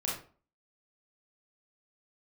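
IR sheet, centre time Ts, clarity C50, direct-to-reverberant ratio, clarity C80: 42 ms, 3.0 dB, -5.0 dB, 9.5 dB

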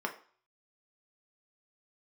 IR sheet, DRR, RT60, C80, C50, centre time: 2.0 dB, 0.45 s, 17.0 dB, 12.5 dB, 11 ms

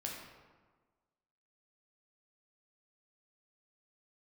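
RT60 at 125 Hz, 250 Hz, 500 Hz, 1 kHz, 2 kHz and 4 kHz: 1.4, 1.5, 1.4, 1.4, 1.1, 0.80 s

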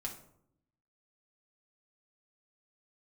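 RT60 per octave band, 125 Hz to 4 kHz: 1.0, 1.0, 0.80, 0.65, 0.45, 0.35 s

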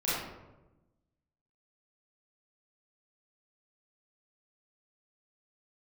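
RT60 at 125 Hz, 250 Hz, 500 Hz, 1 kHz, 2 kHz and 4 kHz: 1.5, 1.4, 1.2, 0.95, 0.75, 0.50 s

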